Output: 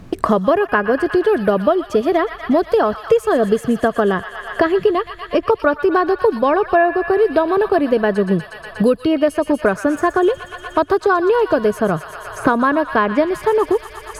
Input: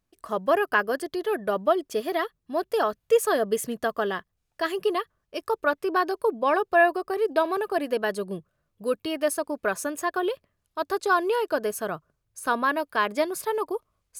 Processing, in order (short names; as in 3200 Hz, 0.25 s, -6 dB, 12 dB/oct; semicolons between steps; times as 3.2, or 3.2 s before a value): RIAA curve playback; thin delay 0.12 s, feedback 71%, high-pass 1500 Hz, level -9 dB; three-band squash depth 100%; gain +7 dB